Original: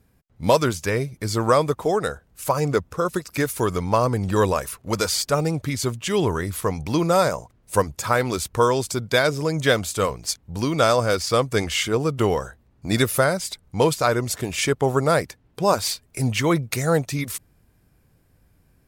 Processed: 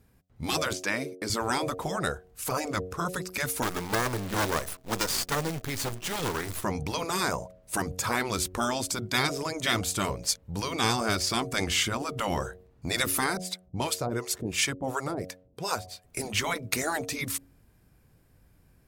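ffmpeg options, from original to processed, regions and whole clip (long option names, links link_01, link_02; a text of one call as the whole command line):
ffmpeg -i in.wav -filter_complex "[0:a]asettb=1/sr,asplit=3[link_01][link_02][link_03];[link_01]atrim=end=0.734[link_04];[link_02]atrim=start=0.73:end=1.3,asetpts=PTS-STARTPTS,afade=type=in:duration=0.004:curve=qsin,afade=type=out:start_time=0.566:duration=0.004:curve=qsin,acrossover=split=8000[link_05][link_06];[link_06]acompressor=threshold=-47dB:ratio=4:attack=1:release=60[link_07];[link_05][link_07]amix=inputs=2:normalize=0,highpass=frequency=350:width_type=q:width=2.1,agate=range=-23dB:threshold=-47dB:ratio=16:release=100:detection=peak[link_08];[link_03]atrim=start=1.296[link_09];[link_04][link_08]acrossfade=duration=0.004:curve1=hsin:curve2=qsin[link_10];[link_10][link_09]acrossfade=duration=0.004:curve1=qsin:curve2=hsin,asettb=1/sr,asplit=3[link_11][link_12][link_13];[link_11]atrim=end=3.624[link_14];[link_12]atrim=start=3.62:end=6.63,asetpts=PTS-STARTPTS,afade=type=in:duration=0.004:curve=qsin,afade=type=out:start_time=3.006:duration=0.004:curve=qsin,aeval=exprs='max(val(0),0)':channel_layout=same,acrusher=bits=2:mode=log:mix=0:aa=0.000001[link_15];[link_13]atrim=start=6.626[link_16];[link_14][link_15]acrossfade=duration=0.004:curve1=hsin:curve2=qsin[link_17];[link_17][link_16]acrossfade=duration=0.004:curve1=qsin:curve2=hsin,asettb=1/sr,asplit=3[link_18][link_19][link_20];[link_18]atrim=end=13.374[link_21];[link_19]atrim=start=13.37:end=16.04,asetpts=PTS-STARTPTS,afade=type=in:duration=0.004:curve=qsin,afade=type=out:start_time=2.666:duration=0.004:curve=qsin,highpass=48,acrossover=split=600[link_22][link_23];[link_22]aeval=exprs='val(0)*(1-1/2+1/2*cos(2*PI*2.8*n/s))':channel_layout=same[link_24];[link_23]aeval=exprs='val(0)*(1-1/2-1/2*cos(2*PI*2.8*n/s))':channel_layout=same[link_25];[link_24][link_25]amix=inputs=2:normalize=0[link_26];[link_20]atrim=start=16.036[link_27];[link_21][link_26]acrossfade=duration=0.004:curve1=hsin:curve2=qsin[link_28];[link_28][link_27]acrossfade=duration=0.004:curve1=qsin:curve2=hsin,bandreject=frequency=91.75:width_type=h:width=4,bandreject=frequency=183.5:width_type=h:width=4,bandreject=frequency=275.25:width_type=h:width=4,bandreject=frequency=367:width_type=h:width=4,bandreject=frequency=458.75:width_type=h:width=4,bandreject=frequency=550.5:width_type=h:width=4,bandreject=frequency=642.25:width_type=h:width=4,bandreject=frequency=734:width_type=h:width=4,afftfilt=real='re*lt(hypot(re,im),0.355)':imag='im*lt(hypot(re,im),0.355)':win_size=1024:overlap=0.75,volume=-1dB" out.wav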